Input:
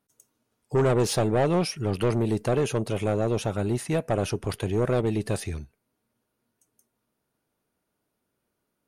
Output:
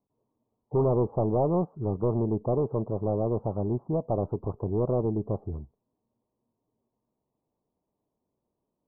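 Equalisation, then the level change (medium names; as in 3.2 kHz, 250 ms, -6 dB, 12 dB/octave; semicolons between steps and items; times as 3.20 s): steep low-pass 1.1 kHz 72 dB/octave; -2.0 dB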